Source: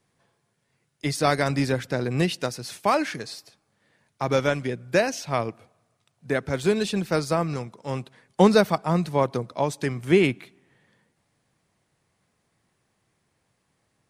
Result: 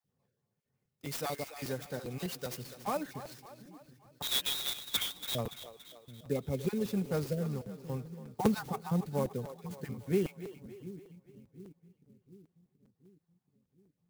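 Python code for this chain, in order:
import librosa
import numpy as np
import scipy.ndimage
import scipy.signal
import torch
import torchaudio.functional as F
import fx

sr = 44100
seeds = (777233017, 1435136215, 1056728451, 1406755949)

p1 = fx.spec_dropout(x, sr, seeds[0], share_pct=29)
p2 = fx.peak_eq(p1, sr, hz=2100.0, db=-10.0, octaves=3.0)
p3 = fx.rider(p2, sr, range_db=4, speed_s=2.0)
p4 = fx.tilt_eq(p3, sr, slope=2.5, at=(1.05, 2.57))
p5 = fx.freq_invert(p4, sr, carrier_hz=3900, at=(4.22, 5.35))
p6 = fx.notch_comb(p5, sr, f0_hz=330.0)
p7 = p6 + fx.echo_split(p6, sr, split_hz=340.0, low_ms=729, high_ms=285, feedback_pct=52, wet_db=-13, dry=0)
p8 = fx.buffer_crackle(p7, sr, first_s=0.65, period_s=0.2, block=256, kind='repeat')
p9 = fx.clock_jitter(p8, sr, seeds[1], jitter_ms=0.032)
y = p9 * 10.0 ** (-6.5 / 20.0)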